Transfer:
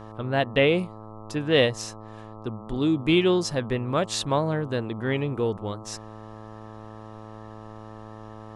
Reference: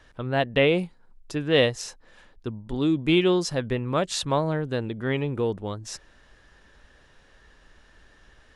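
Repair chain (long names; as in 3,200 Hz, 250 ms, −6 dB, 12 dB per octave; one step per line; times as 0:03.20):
hum removal 108.8 Hz, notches 12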